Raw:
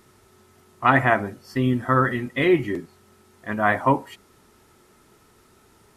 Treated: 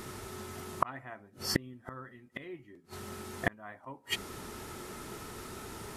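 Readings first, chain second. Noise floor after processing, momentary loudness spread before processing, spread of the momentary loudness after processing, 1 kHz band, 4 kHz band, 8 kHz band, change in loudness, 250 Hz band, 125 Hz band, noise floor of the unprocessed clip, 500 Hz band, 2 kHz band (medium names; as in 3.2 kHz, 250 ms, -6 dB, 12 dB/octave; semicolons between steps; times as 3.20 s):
-61 dBFS, 12 LU, 13 LU, -16.5 dB, -1.0 dB, no reading, -18.0 dB, -17.5 dB, -16.5 dB, -57 dBFS, -18.0 dB, -15.5 dB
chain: inverted gate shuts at -24 dBFS, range -39 dB; trim +12 dB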